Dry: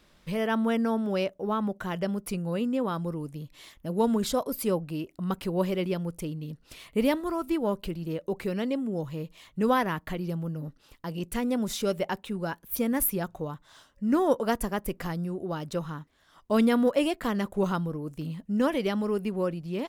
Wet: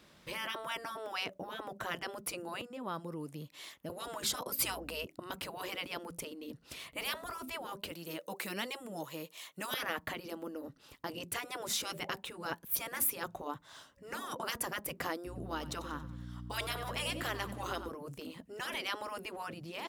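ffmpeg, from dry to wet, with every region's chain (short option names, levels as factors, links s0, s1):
-filter_complex "[0:a]asettb=1/sr,asplit=3[s0][s1][s2];[s0]atrim=end=2.614[s3];[s1]atrim=start=2.61:end=3.9,asetpts=PTS-STARTPTS,afade=t=in:d=0.004:c=qsin,afade=t=out:st=1.286:d=0.004:c=qsin,acompressor=threshold=0.0224:ratio=6:attack=3.2:release=140:knee=1:detection=peak,highpass=f=340:p=1[s4];[s2]atrim=start=3.896[s5];[s3][s4]acrossfade=d=0.004:c1=hsin:c2=qsin[s6];[s6][s5]acrossfade=d=0.004:c1=qsin:c2=hsin,asettb=1/sr,asplit=3[s7][s8][s9];[s7]atrim=end=4.594[s10];[s8]atrim=start=4.59:end=5.06,asetpts=PTS-STARTPTS,afade=t=in:d=0.004:c=qsin,afade=t=out:st=0.466:d=0.004:c=qsin,aeval=exprs='val(0)+0.00251*(sin(2*PI*60*n/s)+sin(2*PI*2*60*n/s)/2+sin(2*PI*3*60*n/s)/3+sin(2*PI*4*60*n/s)/4+sin(2*PI*5*60*n/s)/5)':c=same,acontrast=46[s11];[s9]atrim=start=5.056[s12];[s10][s11]acrossfade=d=0.004:c1=hsin:c2=qsin[s13];[s13][s12]acrossfade=d=0.004:c1=qsin:c2=hsin,asettb=1/sr,asplit=3[s14][s15][s16];[s14]atrim=end=7.914[s17];[s15]atrim=start=7.91:end=9.74,asetpts=PTS-STARTPTS,afade=t=in:d=0.004:c=qsin,afade=t=out:st=1.826:d=0.004:c=qsin,highpass=420,aemphasis=mode=production:type=cd,bandreject=f=4900:w=26[s18];[s16]atrim=start=9.736[s19];[s17][s18]acrossfade=d=0.004:c1=hsin:c2=qsin[s20];[s20][s19]acrossfade=d=0.004:c1=qsin:c2=hsin,asettb=1/sr,asplit=3[s21][s22][s23];[s21]atrim=end=15.264[s24];[s22]atrim=start=15.26:end=17.89,asetpts=PTS-STARTPTS,afade=t=in:d=0.004:c=qsin,afade=t=out:st=2.626:d=0.004:c=qsin,aeval=exprs='val(0)+0.01*(sin(2*PI*60*n/s)+sin(2*PI*2*60*n/s)/2+sin(2*PI*3*60*n/s)/3+sin(2*PI*4*60*n/s)/4+sin(2*PI*5*60*n/s)/5)':c=same,equalizer=f=570:t=o:w=1.4:g=-5.5,aecho=1:1:93|186|279|372|465:0.15|0.0793|0.042|0.0223|0.0118,atrim=end_sample=115983[s25];[s23]atrim=start=17.886[s26];[s24][s25]acrossfade=d=0.004:c1=hsin:c2=qsin[s27];[s27][s26]acrossfade=d=0.004:c1=qsin:c2=hsin,afftfilt=real='re*lt(hypot(re,im),0.1)':imag='im*lt(hypot(re,im),0.1)':win_size=1024:overlap=0.75,highpass=81,volume=1.12"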